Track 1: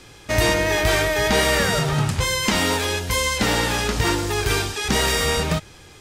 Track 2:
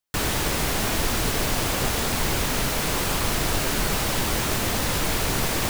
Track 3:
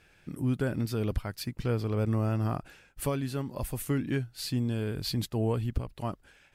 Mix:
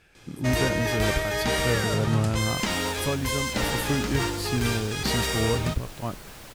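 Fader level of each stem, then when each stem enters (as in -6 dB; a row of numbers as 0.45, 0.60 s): -7.0, -19.5, +2.0 dB; 0.15, 2.35, 0.00 s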